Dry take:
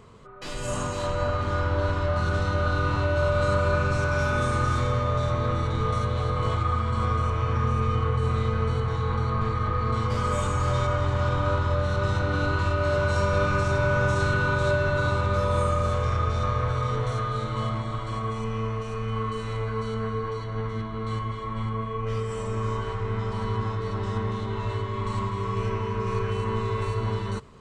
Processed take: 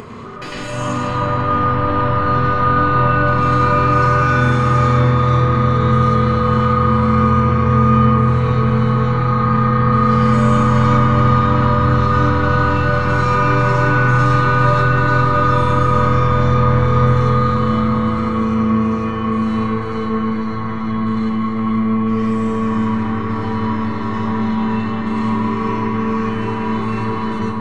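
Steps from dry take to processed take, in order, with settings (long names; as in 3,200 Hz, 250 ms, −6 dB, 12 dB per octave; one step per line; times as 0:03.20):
0:00.97–0:03.28: low-pass filter 3,800 Hz 12 dB per octave
feedback echo with a low-pass in the loop 335 ms, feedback 81%, low-pass 2,100 Hz, level −4.5 dB
convolution reverb RT60 0.70 s, pre-delay 98 ms, DRR −5 dB
upward compression, threshold −19 dBFS
level −3 dB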